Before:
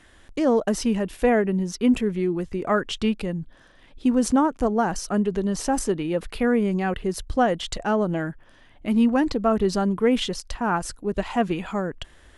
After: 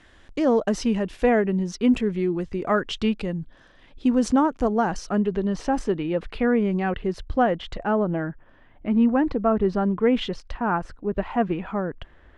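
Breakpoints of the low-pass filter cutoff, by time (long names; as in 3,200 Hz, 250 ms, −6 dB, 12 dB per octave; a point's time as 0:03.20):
0:04.77 6,000 Hz
0:05.36 3,500 Hz
0:07.09 3,500 Hz
0:08.10 1,900 Hz
0:09.75 1,900 Hz
0:10.26 3,200 Hz
0:10.81 2,000 Hz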